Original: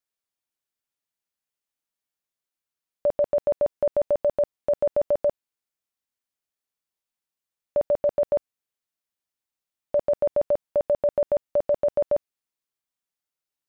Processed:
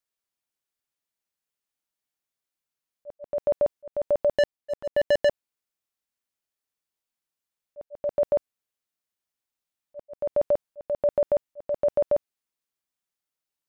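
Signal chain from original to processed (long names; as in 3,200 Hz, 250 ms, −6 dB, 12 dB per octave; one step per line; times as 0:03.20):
volume swells 321 ms
0:04.37–0:05.29: leveller curve on the samples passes 3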